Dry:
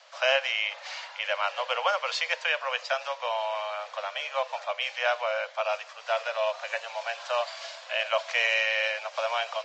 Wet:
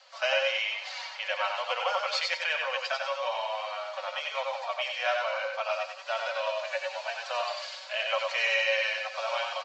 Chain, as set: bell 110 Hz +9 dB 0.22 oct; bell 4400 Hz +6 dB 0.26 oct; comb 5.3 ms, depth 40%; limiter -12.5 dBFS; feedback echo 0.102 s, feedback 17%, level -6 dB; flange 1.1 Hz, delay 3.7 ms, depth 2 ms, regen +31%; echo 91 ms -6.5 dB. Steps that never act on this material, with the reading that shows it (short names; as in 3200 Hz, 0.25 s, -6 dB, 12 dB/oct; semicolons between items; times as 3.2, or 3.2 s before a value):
bell 110 Hz: input band starts at 450 Hz